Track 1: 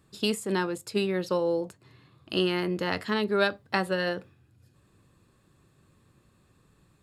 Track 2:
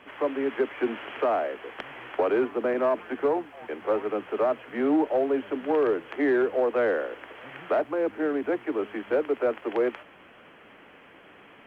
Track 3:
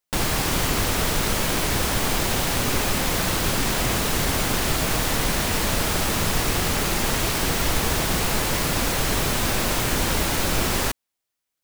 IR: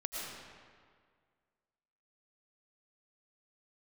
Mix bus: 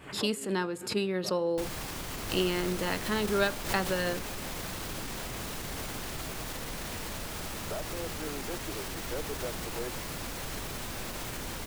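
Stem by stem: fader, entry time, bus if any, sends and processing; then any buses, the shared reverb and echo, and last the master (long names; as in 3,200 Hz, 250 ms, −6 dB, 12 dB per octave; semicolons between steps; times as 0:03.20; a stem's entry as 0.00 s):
−3.5 dB, 0.00 s, send −24 dB, no processing
−14.0 dB, 0.00 s, no send, automatic ducking −18 dB, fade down 1.00 s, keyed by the first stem
−12.0 dB, 1.45 s, no send, brickwall limiter −16 dBFS, peak gain reduction 7 dB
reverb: on, RT60 1.9 s, pre-delay 70 ms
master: background raised ahead of every attack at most 110 dB per second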